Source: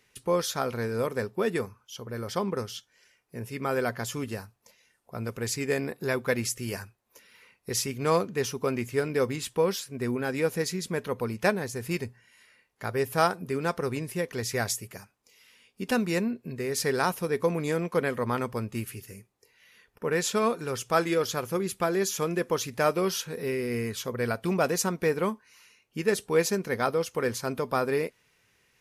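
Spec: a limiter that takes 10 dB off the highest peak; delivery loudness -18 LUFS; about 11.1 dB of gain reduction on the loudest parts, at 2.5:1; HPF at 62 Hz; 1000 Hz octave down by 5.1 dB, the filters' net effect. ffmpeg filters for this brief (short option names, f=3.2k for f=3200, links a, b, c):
-af "highpass=62,equalizer=f=1k:t=o:g=-7,acompressor=threshold=-38dB:ratio=2.5,volume=24dB,alimiter=limit=-8dB:level=0:latency=1"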